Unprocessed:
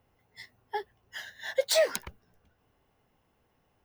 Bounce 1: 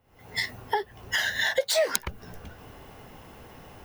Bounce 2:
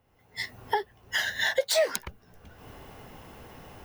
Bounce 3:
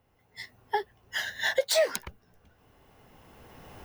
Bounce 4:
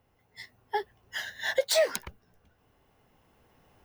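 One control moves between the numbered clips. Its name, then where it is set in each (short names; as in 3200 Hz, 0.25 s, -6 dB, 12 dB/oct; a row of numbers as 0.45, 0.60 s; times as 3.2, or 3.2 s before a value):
recorder AGC, rising by: 85, 33, 13, 5.1 dB/s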